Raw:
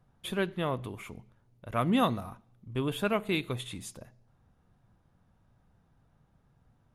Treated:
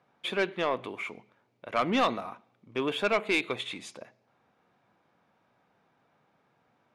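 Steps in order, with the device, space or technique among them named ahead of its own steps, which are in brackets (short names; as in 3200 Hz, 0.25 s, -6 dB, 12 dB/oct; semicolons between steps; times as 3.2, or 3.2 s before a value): intercom (BPF 350–4900 Hz; bell 2300 Hz +7 dB 0.24 oct; soft clip -23.5 dBFS, distortion -13 dB); gain +6 dB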